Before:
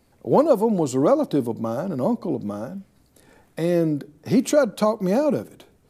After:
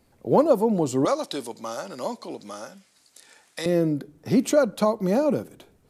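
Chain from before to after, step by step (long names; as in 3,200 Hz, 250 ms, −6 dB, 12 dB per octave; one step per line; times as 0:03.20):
0:01.05–0:03.66: meter weighting curve ITU-R 468
level −1.5 dB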